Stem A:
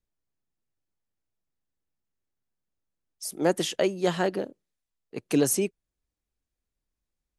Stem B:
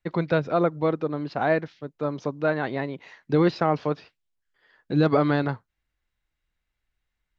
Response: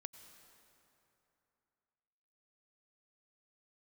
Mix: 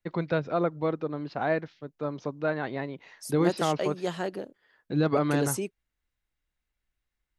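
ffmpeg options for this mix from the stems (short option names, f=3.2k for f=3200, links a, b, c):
-filter_complex "[0:a]volume=-6dB[a];[1:a]volume=-4.5dB[b];[a][b]amix=inputs=2:normalize=0"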